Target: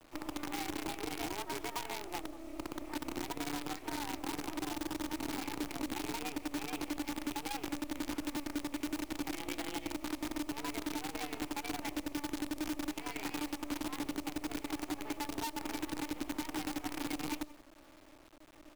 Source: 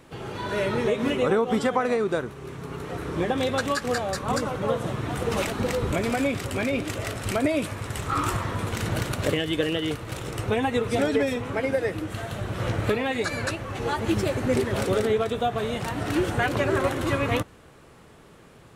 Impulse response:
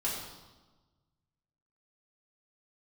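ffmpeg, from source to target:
-filter_complex "[0:a]afreqshift=190,asplit=3[a][b][c];[a]bandpass=f=300:t=q:w=8,volume=0dB[d];[b]bandpass=f=870:t=q:w=8,volume=-6dB[e];[c]bandpass=f=2.24k:t=q:w=8,volume=-9dB[f];[d][e][f]amix=inputs=3:normalize=0,acompressor=threshold=-36dB:ratio=8,highpass=78,highshelf=f=6.3k:g=-4.5,asplit=2[g][h];[h]aecho=0:1:183:0.168[i];[g][i]amix=inputs=2:normalize=0,acrusher=bits=7:dc=4:mix=0:aa=0.000001,acrossover=split=210|3000[j][k][l];[k]acompressor=threshold=-41dB:ratio=6[m];[j][m][l]amix=inputs=3:normalize=0,volume=4dB"

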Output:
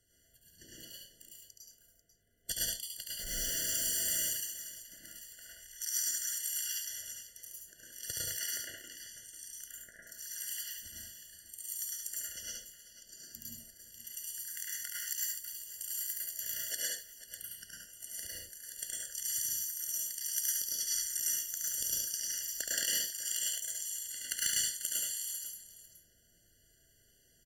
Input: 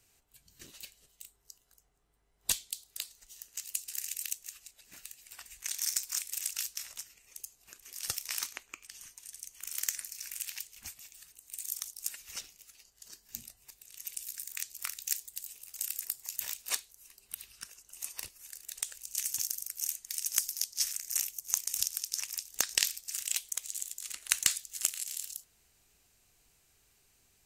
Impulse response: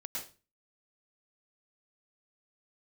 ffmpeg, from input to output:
-filter_complex "[0:a]asettb=1/sr,asplit=3[a][b][c];[a]atrim=end=3.194[d];[b]atrim=start=3.19:end=4.19,asetpts=PTS-STARTPTS,afade=t=in:d=0.004:c=qsin,afade=t=out:st=0.996:d=0.004:c=qsin,aeval=exprs='val(0)+0.5*0.0299*sgn(val(0))':c=same[e];[c]atrim=start=4.186[f];[d][e]acrossfade=d=0.004:c1=hsin:c2=qsin[g];[g][f]acrossfade=d=0.004:c1=qsin:c2=hsin,asettb=1/sr,asplit=3[h][i][j];[h]atrim=end=5.384[k];[i]atrim=start=5.38:end=5.8,asetpts=PTS-STARTPTS,afade=t=in:d=0.004:c=qsin,afade=t=out:st=0.416:d=0.004:c=qsin,acompressor=threshold=-49dB:ratio=5[l];[j]atrim=start=5.796[m];[k][l]acrossfade=d=0.004:c1=hsin:c2=qsin[n];[n][m]acrossfade=d=0.004:c1=qsin:c2=hsin,asettb=1/sr,asplit=3[o][p][q];[o]atrim=end=9.644[r];[p]atrim=start=9.64:end=10.07,asetpts=PTS-STARTPTS,afade=t=in:d=0.004:c=qsin,afade=t=out:st=0.426:d=0.004:c=qsin,lowpass=f=1.4k:w=0.5412,lowpass=f=1.4k:w=1.3066[s];[q]atrim=start=10.066[t];[r][s]acrossfade=d=0.004:c1=hsin:c2=qsin[u];[u][t]acrossfade=d=0.004:c1=qsin:c2=hsin,asoftclip=type=hard:threshold=-14.5dB,aecho=1:1:71|492:0.668|0.2[v];[1:a]atrim=start_sample=2205,afade=t=out:st=0.27:d=0.01,atrim=end_sample=12348[w];[v][w]afir=irnorm=-1:irlink=0,afftfilt=real='re*eq(mod(floor(b*sr/1024/690),2),0)':imag='im*eq(mod(floor(b*sr/1024/690),2),0)':win_size=1024:overlap=0.75,volume=2dB"

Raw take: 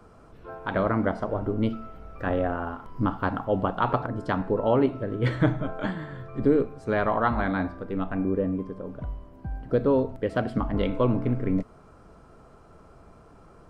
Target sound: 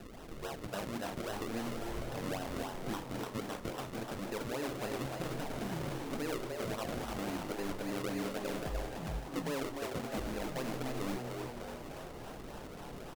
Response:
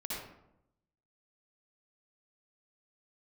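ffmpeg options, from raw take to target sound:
-filter_complex "[0:a]lowpass=3.8k,equalizer=f=92:t=o:w=1:g=-8,bandreject=f=60:t=h:w=6,bandreject=f=120:t=h:w=6,bandreject=f=180:t=h:w=6,bandreject=f=240:t=h:w=6,bandreject=f=300:t=h:w=6,areverse,acompressor=threshold=-33dB:ratio=6,areverse,alimiter=level_in=10.5dB:limit=-24dB:level=0:latency=1:release=426,volume=-10.5dB,acrusher=samples=40:mix=1:aa=0.000001:lfo=1:lforange=40:lforate=3.5,asplit=2[a][b];[b]asplit=8[c][d][e][f][g][h][i][j];[c]adelay=312,afreqshift=110,volume=-5dB[k];[d]adelay=624,afreqshift=220,volume=-9.4dB[l];[e]adelay=936,afreqshift=330,volume=-13.9dB[m];[f]adelay=1248,afreqshift=440,volume=-18.3dB[n];[g]adelay=1560,afreqshift=550,volume=-22.7dB[o];[h]adelay=1872,afreqshift=660,volume=-27.2dB[p];[i]adelay=2184,afreqshift=770,volume=-31.6dB[q];[j]adelay=2496,afreqshift=880,volume=-36.1dB[r];[k][l][m][n][o][p][q][r]amix=inputs=8:normalize=0[s];[a][s]amix=inputs=2:normalize=0,asetrate=45938,aresample=44100,volume=4.5dB"

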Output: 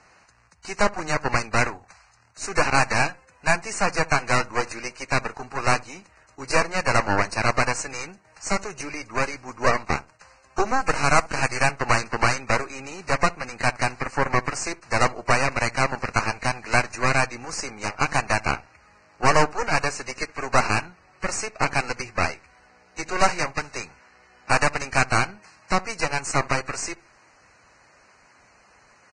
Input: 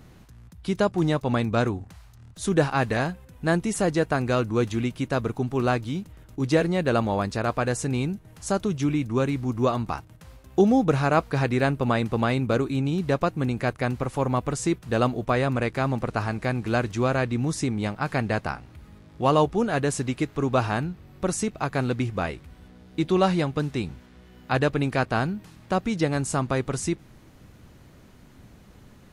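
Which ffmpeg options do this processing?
-filter_complex "[0:a]asplit=3[a][b][c];[a]afade=t=out:st=9.28:d=0.02[d];[b]agate=range=-33dB:threshold=-27dB:ratio=3:detection=peak,afade=t=in:st=9.28:d=0.02,afade=t=out:st=9.73:d=0.02[e];[c]afade=t=in:st=9.73:d=0.02[f];[d][e][f]amix=inputs=3:normalize=0,asettb=1/sr,asplit=3[g][h][i];[g]atrim=end=19.894[j];[h]atrim=start=19.89:end=20.4,asetpts=PTS-STARTPTS,afade=t=in:d=0.004:c=qsin,afade=t=out:st=0.506:d=0.004:c=qsin,acrossover=split=5900[k][l];[l]acompressor=threshold=-39dB:ratio=4:attack=1:release=60[m];[k][m]amix=inputs=2:normalize=0[n];[i]atrim=start=20.396[o];[j][n]acrossfade=d=0.004:c1=hsin:c2=qsin[p];[p][o]acrossfade=d=0.004:c1=qsin:c2=hsin,acrossover=split=600 7100:gain=0.0708 1 0.0891[q][r][s];[q][r][s]amix=inputs=3:normalize=0,asettb=1/sr,asplit=3[t][u][v];[t]atrim=end=10.814[w];[u]atrim=start=10.81:end=11.7,asetpts=PTS-STARTPTS,afade=t=in:d=0.004:c=qsin,afade=t=out:st=0.886:d=0.004:c=qsin,acrusher=bits=6:dc=4:mix=0:aa=0.000001[x];[v]atrim=start=11.696[y];[w][x]acrossfade=d=0.004:c1=hsin:c2=qsin[z];[z][y]acrossfade=d=0.004:c1=qsin:c2=hsin,asoftclip=type=tanh:threshold=-14dB,aeval=exprs='0.188*(cos(1*acos(clip(val(0)/0.188,-1,1)))-cos(1*PI/2))+0.0596*(cos(2*acos(clip(val(0)/0.188,-1,1)))-cos(2*PI/2))+0.0596*(cos(6*acos(clip(val(0)/0.188,-1,1)))-cos(6*PI/2))+0.00376*(cos(8*acos(clip(val(0)/0.188,-1,1)))-cos(8*PI/2))':c=same,asuperstop=centerf=3400:order=4:qfactor=2.2,asplit=2[aa][ab];[ab]adelay=67,lowpass=f=930:p=1,volume=-20dB,asplit=2[ac][ad];[ad]adelay=67,lowpass=f=930:p=1,volume=0.26[ae];[aa][ac][ae]amix=inputs=3:normalize=0,volume=5.5dB" -ar 22050 -c:a libvorbis -b:a 16k

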